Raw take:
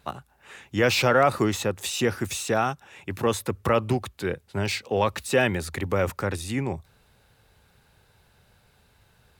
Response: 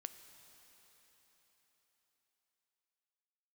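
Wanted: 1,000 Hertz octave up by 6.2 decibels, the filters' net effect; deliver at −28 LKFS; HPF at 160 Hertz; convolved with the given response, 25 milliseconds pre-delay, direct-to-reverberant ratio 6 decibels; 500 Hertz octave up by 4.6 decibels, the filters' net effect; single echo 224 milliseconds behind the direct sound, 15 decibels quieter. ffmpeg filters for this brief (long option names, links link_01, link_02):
-filter_complex "[0:a]highpass=160,equalizer=frequency=500:width_type=o:gain=3.5,equalizer=frequency=1000:width_type=o:gain=7.5,aecho=1:1:224:0.178,asplit=2[link_01][link_02];[1:a]atrim=start_sample=2205,adelay=25[link_03];[link_02][link_03]afir=irnorm=-1:irlink=0,volume=-1.5dB[link_04];[link_01][link_04]amix=inputs=2:normalize=0,volume=-7dB"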